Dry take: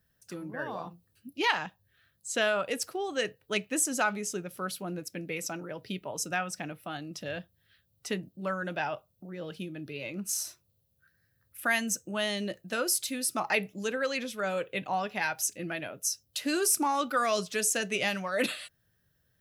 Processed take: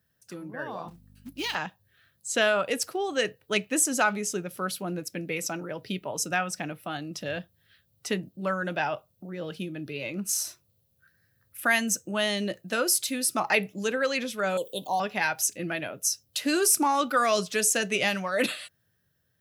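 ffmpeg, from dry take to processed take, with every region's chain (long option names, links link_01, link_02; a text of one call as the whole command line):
ffmpeg -i in.wav -filter_complex "[0:a]asettb=1/sr,asplit=3[link_01][link_02][link_03];[link_01]atrim=end=0.884[link_04];[link_02]atrim=start=0.88:end=1.55,asetpts=PTS-STARTPTS,afade=type=in:duration=0.004:curve=qsin,afade=type=out:start_time=0.666:duration=0.004:curve=qsin,acrossover=split=260|3000[link_05][link_06][link_07];[link_06]acompressor=threshold=-40dB:ratio=6:attack=3.2:release=140:knee=2.83:detection=peak[link_08];[link_05][link_08][link_07]amix=inputs=3:normalize=0,acrusher=bits=4:mode=log:mix=0:aa=0.000001,aeval=exprs='val(0)+0.00224*(sin(2*PI*50*n/s)+sin(2*PI*2*50*n/s)/2+sin(2*PI*3*50*n/s)/3+sin(2*PI*4*50*n/s)/4+sin(2*PI*5*50*n/s)/5)':channel_layout=same[link_09];[link_03]atrim=start=1.546[link_10];[link_04][link_09]acrossfade=duration=0.004:curve1=hsin:curve2=qsin[link_11];[link_11][link_10]acrossfade=duration=0.004:curve1=qsin:curve2=hsin,asettb=1/sr,asplit=3[link_12][link_13][link_14];[link_12]atrim=end=14.574[link_15];[link_13]atrim=start=14.57:end=15,asetpts=PTS-STARTPTS,afade=type=in:duration=0.004:curve=qsin,afade=type=out:start_time=0.426:duration=0.004:curve=qsin,asuperstop=centerf=1800:order=12:qfactor=0.83,aemphasis=mode=production:type=bsi[link_16];[link_14]atrim=start=14.996[link_17];[link_15][link_16]acrossfade=duration=0.004:curve1=hsin:curve2=qsin[link_18];[link_18][link_17]acrossfade=duration=0.004:curve1=qsin:curve2=hsin,highpass=71,dynaudnorm=framelen=250:gausssize=9:maxgain=4dB" out.wav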